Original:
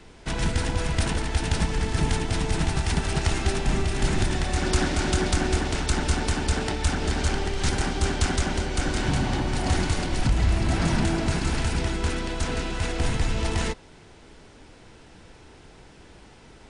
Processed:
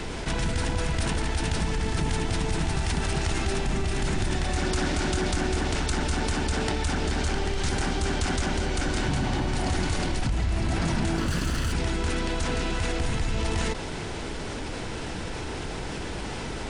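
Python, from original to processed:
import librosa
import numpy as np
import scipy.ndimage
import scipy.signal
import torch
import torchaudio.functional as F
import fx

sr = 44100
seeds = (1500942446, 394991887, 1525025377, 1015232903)

y = fx.lower_of_two(x, sr, delay_ms=0.65, at=(11.16, 11.71), fade=0.02)
y = fx.env_flatten(y, sr, amount_pct=70)
y = F.gain(torch.from_numpy(y), -6.5).numpy()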